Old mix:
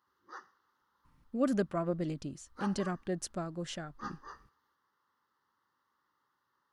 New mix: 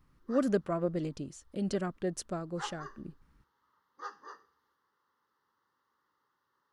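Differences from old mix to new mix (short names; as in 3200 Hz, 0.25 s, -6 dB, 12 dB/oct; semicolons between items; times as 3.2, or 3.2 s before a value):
speech: entry -1.05 s; master: add bell 450 Hz +5 dB 0.52 oct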